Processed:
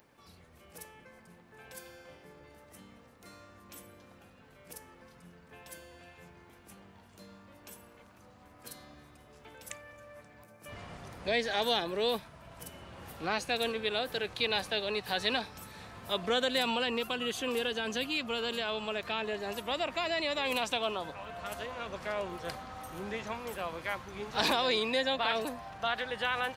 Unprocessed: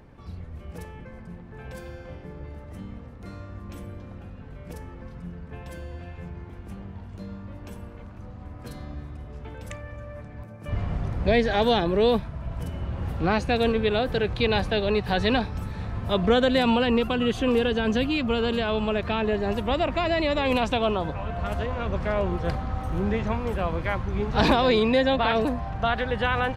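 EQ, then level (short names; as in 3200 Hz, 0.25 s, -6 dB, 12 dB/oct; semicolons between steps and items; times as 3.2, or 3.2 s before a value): RIAA curve recording; low shelf 63 Hz -5 dB; -7.5 dB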